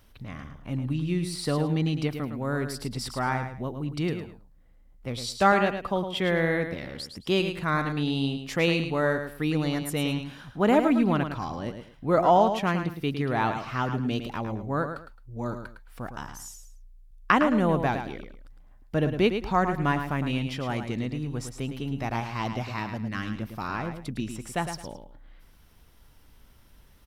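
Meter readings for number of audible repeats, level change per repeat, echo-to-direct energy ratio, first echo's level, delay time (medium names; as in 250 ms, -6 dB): 2, -12.0 dB, -7.5 dB, -8.0 dB, 108 ms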